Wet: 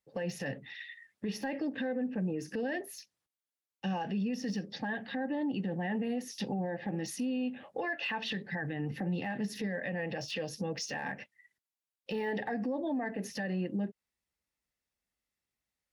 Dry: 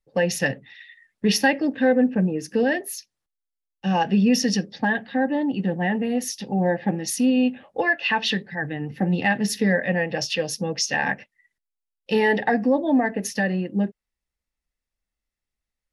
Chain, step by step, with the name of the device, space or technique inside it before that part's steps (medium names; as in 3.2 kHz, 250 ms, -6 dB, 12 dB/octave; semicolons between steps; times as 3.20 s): podcast mastering chain (high-pass 86 Hz; de-esser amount 100%; compression 3:1, threshold -28 dBFS, peak gain reduction 10.5 dB; peak limiter -26.5 dBFS, peak gain reduction 10.5 dB; MP3 112 kbps 48 kHz)